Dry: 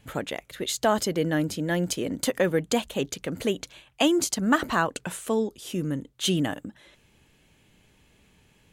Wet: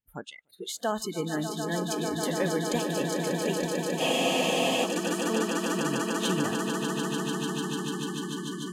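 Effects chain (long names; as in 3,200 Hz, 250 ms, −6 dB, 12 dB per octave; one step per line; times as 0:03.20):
echo that builds up and dies away 148 ms, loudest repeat 8, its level −7.5 dB
noise reduction from a noise print of the clip's start 30 dB
frozen spectrum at 0:04.01, 0.82 s
level −6.5 dB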